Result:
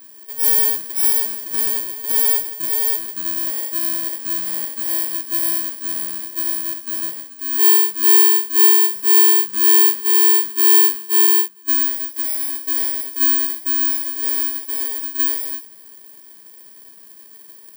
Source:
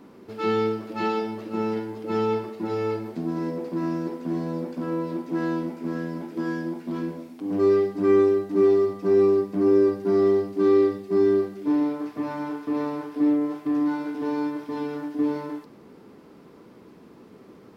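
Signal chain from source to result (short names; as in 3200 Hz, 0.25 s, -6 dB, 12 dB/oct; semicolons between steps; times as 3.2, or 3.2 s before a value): FFT order left unsorted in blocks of 32 samples; tilt +4 dB/oct; 11.27–11.83 gate -15 dBFS, range -14 dB; gain -3.5 dB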